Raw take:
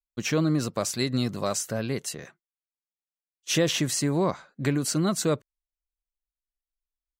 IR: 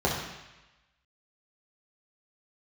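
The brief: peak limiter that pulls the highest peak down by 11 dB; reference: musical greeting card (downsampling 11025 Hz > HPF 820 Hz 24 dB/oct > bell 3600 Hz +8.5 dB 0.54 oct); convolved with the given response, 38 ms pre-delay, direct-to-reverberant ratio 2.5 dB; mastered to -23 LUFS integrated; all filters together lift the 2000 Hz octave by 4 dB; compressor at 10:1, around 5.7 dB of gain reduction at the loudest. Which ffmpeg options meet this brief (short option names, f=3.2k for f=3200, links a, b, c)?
-filter_complex "[0:a]equalizer=f=2k:t=o:g=3.5,acompressor=threshold=-25dB:ratio=10,alimiter=level_in=1dB:limit=-24dB:level=0:latency=1,volume=-1dB,asplit=2[a][b];[1:a]atrim=start_sample=2205,adelay=38[c];[b][c]afir=irnorm=-1:irlink=0,volume=-16dB[d];[a][d]amix=inputs=2:normalize=0,aresample=11025,aresample=44100,highpass=f=820:w=0.5412,highpass=f=820:w=1.3066,equalizer=f=3.6k:t=o:w=0.54:g=8.5,volume=14dB"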